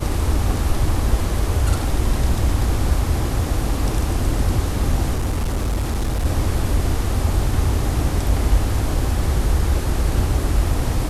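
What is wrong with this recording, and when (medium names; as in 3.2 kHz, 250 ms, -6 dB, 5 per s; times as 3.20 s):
5.15–6.26 s: clipped -17 dBFS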